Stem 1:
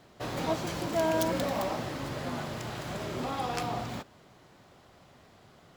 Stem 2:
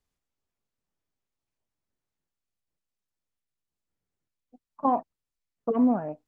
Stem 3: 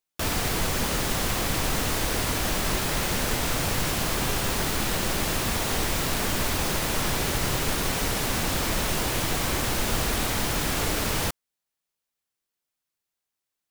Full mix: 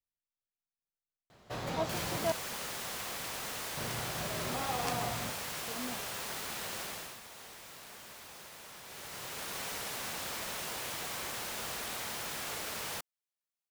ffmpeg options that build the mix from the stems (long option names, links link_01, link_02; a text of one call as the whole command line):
ffmpeg -i stem1.wav -i stem2.wav -i stem3.wav -filter_complex "[0:a]adelay=1300,volume=-2.5dB,asplit=3[link_01][link_02][link_03];[link_01]atrim=end=2.32,asetpts=PTS-STARTPTS,afade=type=out:start_time=2.316:duration=0.004:curve=hsin[link_04];[link_02]atrim=start=2.32:end=3.77,asetpts=PTS-STARTPTS,volume=0[link_05];[link_03]atrim=start=3.77,asetpts=PTS-STARTPTS,afade=type=in:duration=0.004:curve=hsin[link_06];[link_04][link_05][link_06]concat=n=3:v=0:a=1[link_07];[1:a]volume=-18.5dB[link_08];[2:a]highpass=frequency=420:poles=1,adelay=1700,afade=type=out:start_time=6.81:duration=0.39:silence=0.298538,afade=type=in:start_time=8.83:duration=0.78:silence=0.281838[link_09];[link_07][link_08][link_09]amix=inputs=3:normalize=0,equalizer=frequency=300:width=2.1:gain=-5.5" out.wav